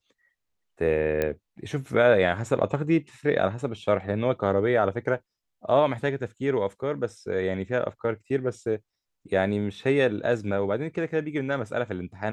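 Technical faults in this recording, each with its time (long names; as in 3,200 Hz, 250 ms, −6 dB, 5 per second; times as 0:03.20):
0:01.22: click −13 dBFS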